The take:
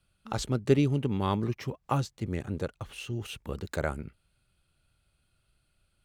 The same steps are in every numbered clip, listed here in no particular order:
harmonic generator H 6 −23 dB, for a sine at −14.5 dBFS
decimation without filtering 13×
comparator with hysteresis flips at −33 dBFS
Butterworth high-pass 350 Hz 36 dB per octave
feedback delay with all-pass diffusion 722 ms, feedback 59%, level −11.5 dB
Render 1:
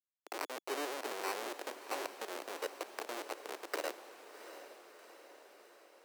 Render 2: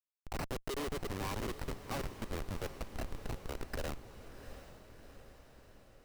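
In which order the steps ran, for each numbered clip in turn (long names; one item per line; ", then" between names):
comparator with hysteresis, then decimation without filtering, then feedback delay with all-pass diffusion, then harmonic generator, then Butterworth high-pass
harmonic generator, then decimation without filtering, then Butterworth high-pass, then comparator with hysteresis, then feedback delay with all-pass diffusion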